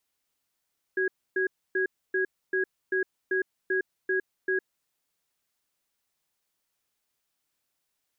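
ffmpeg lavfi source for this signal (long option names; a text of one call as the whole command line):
ffmpeg -f lavfi -i "aevalsrc='0.0501*(sin(2*PI*377*t)+sin(2*PI*1650*t))*clip(min(mod(t,0.39),0.11-mod(t,0.39))/0.005,0,1)':duration=3.82:sample_rate=44100" out.wav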